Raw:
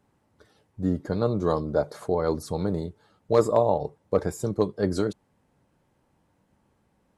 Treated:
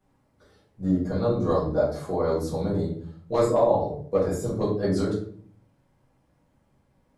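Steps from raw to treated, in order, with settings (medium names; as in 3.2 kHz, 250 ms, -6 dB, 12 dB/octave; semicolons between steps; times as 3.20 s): simulated room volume 60 m³, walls mixed, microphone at 1.8 m; trim -8.5 dB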